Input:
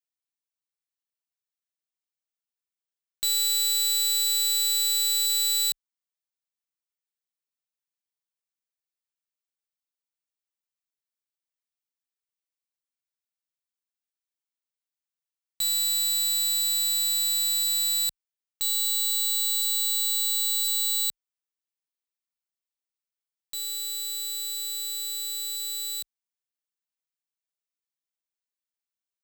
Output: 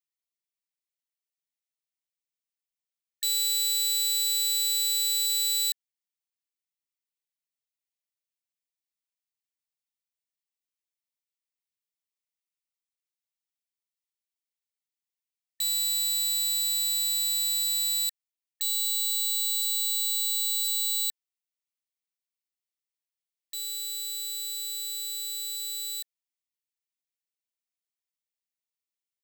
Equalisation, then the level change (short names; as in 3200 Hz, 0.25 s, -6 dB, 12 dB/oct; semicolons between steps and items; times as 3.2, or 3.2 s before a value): brick-wall FIR high-pass 1800 Hz; -2.0 dB